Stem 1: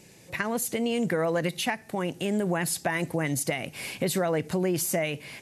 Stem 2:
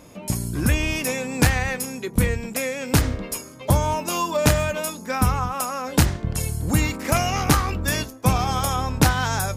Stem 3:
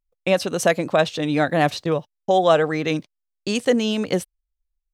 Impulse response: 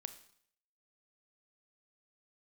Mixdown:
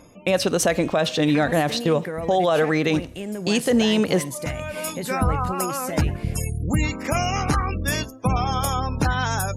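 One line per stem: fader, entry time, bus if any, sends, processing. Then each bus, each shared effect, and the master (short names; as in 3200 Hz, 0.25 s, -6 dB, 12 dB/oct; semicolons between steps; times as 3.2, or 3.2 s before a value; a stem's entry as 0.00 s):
-7.0 dB, 0.95 s, send -3 dB, dry
-0.5 dB, 0.00 s, send -22.5 dB, spectral gate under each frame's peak -25 dB strong; auto duck -22 dB, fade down 0.50 s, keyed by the third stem
+2.0 dB, 0.00 s, send -6 dB, dry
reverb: on, RT60 0.60 s, pre-delay 27 ms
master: limiter -10.5 dBFS, peak gain reduction 11.5 dB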